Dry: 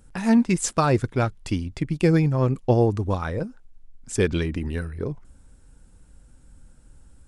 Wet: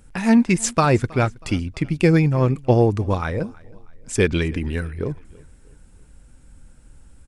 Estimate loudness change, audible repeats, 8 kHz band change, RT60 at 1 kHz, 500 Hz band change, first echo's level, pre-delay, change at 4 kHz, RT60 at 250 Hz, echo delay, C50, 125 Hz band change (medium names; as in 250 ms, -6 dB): +3.0 dB, 2, +3.0 dB, no reverb, +3.0 dB, -24.0 dB, no reverb, +4.0 dB, no reverb, 320 ms, no reverb, +3.0 dB